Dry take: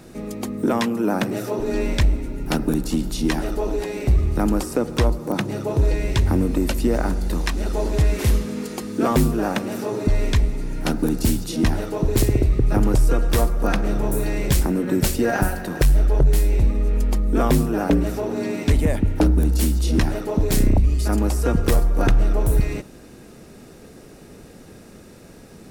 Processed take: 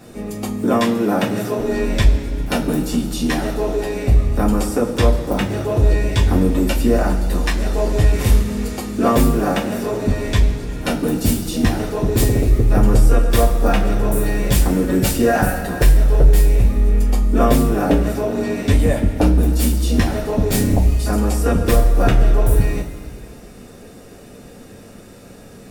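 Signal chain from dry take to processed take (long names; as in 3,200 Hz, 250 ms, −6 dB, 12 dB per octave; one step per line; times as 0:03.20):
coupled-rooms reverb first 0.2 s, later 2.1 s, from −19 dB, DRR −5.5 dB
level −2.5 dB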